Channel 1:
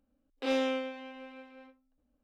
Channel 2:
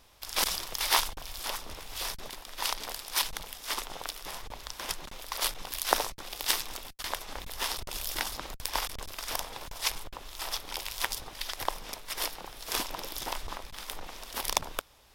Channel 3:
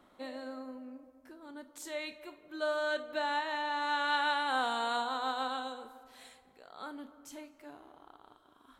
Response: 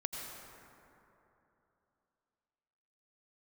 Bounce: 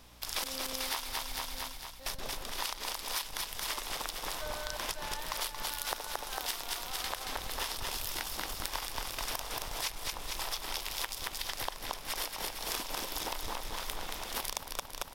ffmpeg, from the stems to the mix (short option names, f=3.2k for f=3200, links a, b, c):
-filter_complex "[0:a]alimiter=level_in=7.5dB:limit=-24dB:level=0:latency=1,volume=-7.5dB,aeval=exprs='val(0)+0.001*(sin(2*PI*60*n/s)+sin(2*PI*2*60*n/s)/2+sin(2*PI*3*60*n/s)/3+sin(2*PI*4*60*n/s)/4+sin(2*PI*5*60*n/s)/5)':c=same,volume=-0.5dB[a];[1:a]volume=2.5dB,asplit=3[b][c][d];[b]atrim=end=1.39,asetpts=PTS-STARTPTS,afade=t=out:st=1.386:d=0.004:c=hsin[e];[c]atrim=start=1.39:end=2.06,asetpts=PTS-STARTPTS,volume=0[f];[d]atrim=start=2.06,asetpts=PTS-STARTPTS,afade=t=in:d=0.004:c=hsin[g];[e][f][g]concat=n=3:v=0:a=1,asplit=2[h][i];[i]volume=-5dB[j];[2:a]highpass=440,adelay=1800,volume=-8.5dB[k];[j]aecho=0:1:226|452|678|904|1130|1356|1582:1|0.48|0.23|0.111|0.0531|0.0255|0.0122[l];[a][h][k][l]amix=inputs=4:normalize=0,acompressor=threshold=-32dB:ratio=12"